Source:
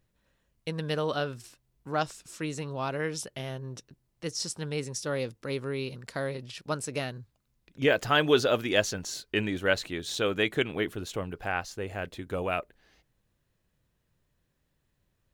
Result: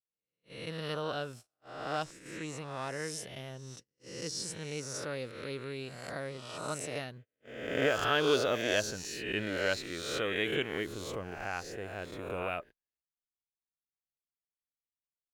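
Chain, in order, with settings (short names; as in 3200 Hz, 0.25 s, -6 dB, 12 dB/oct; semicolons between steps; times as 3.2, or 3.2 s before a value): spectral swells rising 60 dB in 1.01 s; 2.04–2.49 high shelf 11000 Hz -10 dB; gate -41 dBFS, range -35 dB; gain -8 dB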